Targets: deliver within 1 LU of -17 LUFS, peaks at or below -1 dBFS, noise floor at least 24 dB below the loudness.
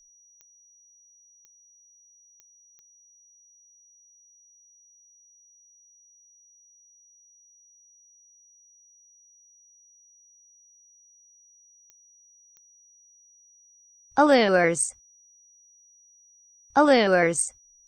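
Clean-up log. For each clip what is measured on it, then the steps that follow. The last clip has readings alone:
clicks found 7; steady tone 5.8 kHz; tone level -55 dBFS; loudness -21.5 LUFS; peak level -6.0 dBFS; loudness target -17.0 LUFS
-> de-click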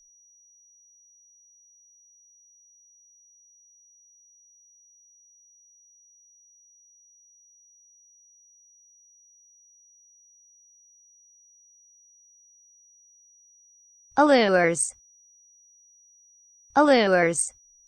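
clicks found 0; steady tone 5.8 kHz; tone level -55 dBFS
-> band-stop 5.8 kHz, Q 30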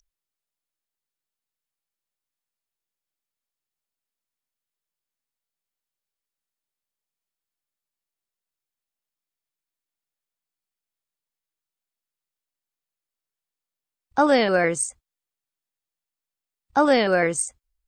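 steady tone not found; loudness -21.5 LUFS; peak level -6.5 dBFS; loudness target -17.0 LUFS
-> trim +4.5 dB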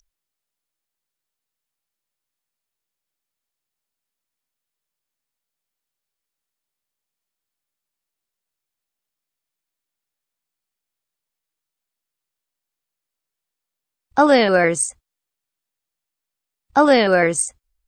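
loudness -17.0 LUFS; peak level -2.0 dBFS; noise floor -85 dBFS

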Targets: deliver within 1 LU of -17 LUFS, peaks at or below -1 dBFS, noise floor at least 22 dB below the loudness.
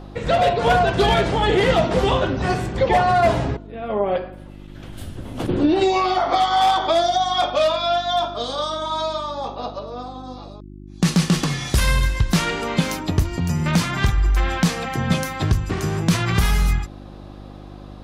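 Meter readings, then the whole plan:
hum 50 Hz; highest harmonic 350 Hz; hum level -34 dBFS; loudness -20.0 LUFS; peak level -6.5 dBFS; loudness target -17.0 LUFS
-> de-hum 50 Hz, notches 7; trim +3 dB

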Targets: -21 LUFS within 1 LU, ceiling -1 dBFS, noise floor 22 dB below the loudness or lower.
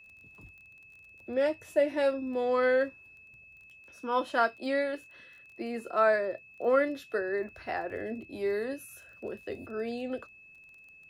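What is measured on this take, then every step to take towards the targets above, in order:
tick rate 23 per s; steady tone 2.6 kHz; tone level -52 dBFS; loudness -30.5 LUFS; peak level -13.0 dBFS; loudness target -21.0 LUFS
-> de-click; band-stop 2.6 kHz, Q 30; trim +9.5 dB

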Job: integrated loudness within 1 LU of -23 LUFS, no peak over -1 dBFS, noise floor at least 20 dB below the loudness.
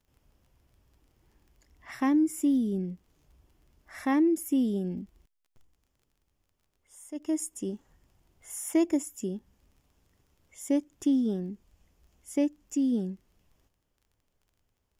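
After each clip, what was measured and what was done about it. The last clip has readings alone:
tick rate 20 per s; loudness -29.5 LUFS; peak level -14.5 dBFS; loudness target -23.0 LUFS
-> de-click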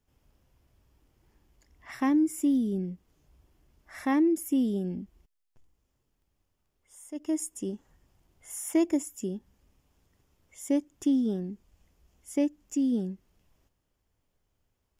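tick rate 0.067 per s; loudness -29.5 LUFS; peak level -14.5 dBFS; loudness target -23.0 LUFS
-> trim +6.5 dB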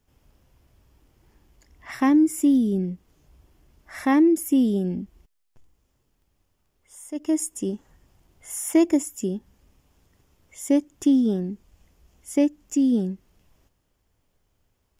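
loudness -23.0 LUFS; peak level -8.0 dBFS; noise floor -71 dBFS

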